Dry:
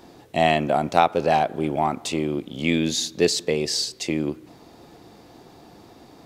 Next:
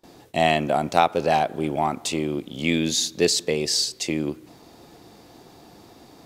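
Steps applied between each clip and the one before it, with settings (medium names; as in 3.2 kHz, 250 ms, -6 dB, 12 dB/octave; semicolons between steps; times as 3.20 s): gate with hold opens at -39 dBFS; treble shelf 4.2 kHz +5.5 dB; trim -1 dB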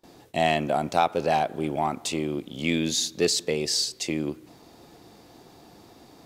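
saturation -5.5 dBFS, distortion -24 dB; trim -2.5 dB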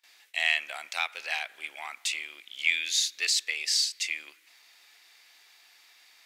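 resonant high-pass 2.1 kHz, resonance Q 2.5; trim -1.5 dB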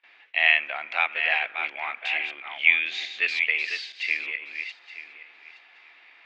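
backward echo that repeats 436 ms, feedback 41%, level -7 dB; Chebyshev low-pass 2.6 kHz, order 3; trim +7.5 dB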